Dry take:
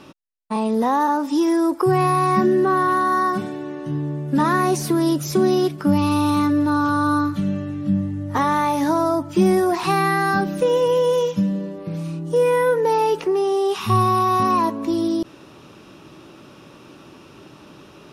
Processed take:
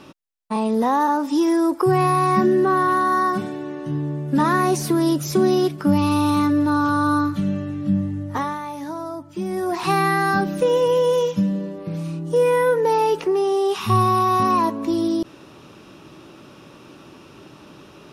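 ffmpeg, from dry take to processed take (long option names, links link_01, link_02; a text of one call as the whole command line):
ffmpeg -i in.wav -filter_complex "[0:a]asplit=3[link_01][link_02][link_03];[link_01]atrim=end=8.59,asetpts=PTS-STARTPTS,afade=type=out:start_time=8.17:duration=0.42:silence=0.281838[link_04];[link_02]atrim=start=8.59:end=9.49,asetpts=PTS-STARTPTS,volume=-11dB[link_05];[link_03]atrim=start=9.49,asetpts=PTS-STARTPTS,afade=type=in:duration=0.42:silence=0.281838[link_06];[link_04][link_05][link_06]concat=n=3:v=0:a=1" out.wav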